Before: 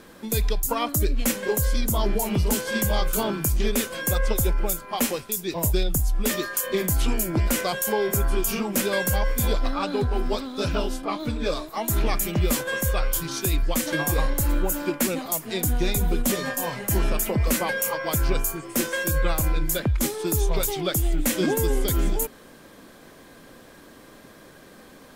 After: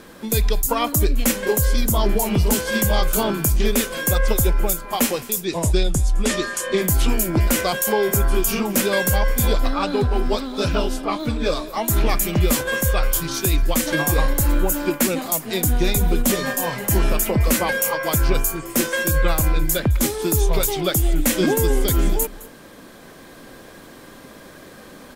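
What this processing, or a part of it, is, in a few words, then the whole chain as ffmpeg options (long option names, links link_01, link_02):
ducked delay: -filter_complex "[0:a]asplit=3[link_01][link_02][link_03];[link_02]adelay=212,volume=-4dB[link_04];[link_03]apad=whole_len=1118859[link_05];[link_04][link_05]sidechaincompress=threshold=-37dB:ratio=8:attack=7.4:release=915[link_06];[link_01][link_06]amix=inputs=2:normalize=0,asettb=1/sr,asplit=3[link_07][link_08][link_09];[link_07]atrim=end=5.454[link_10];[link_08]atrim=start=5.45:end=6.82,asetpts=PTS-STARTPTS,afade=type=in:duration=0.004:curve=qsin,afade=type=out:start_time=1.366:duration=0.004:curve=qsin,lowpass=frequency=9600:width=0.5412,lowpass=frequency=9600:width=1.3066[link_11];[link_09]atrim=start=6.816[link_12];[link_10][link_11]acrossfade=duration=0.004:curve1=hsin:curve2=qsin[link_13];[link_13][link_12]acrossfade=duration=0.004:curve1=qsin:curve2=hsin,volume=4.5dB"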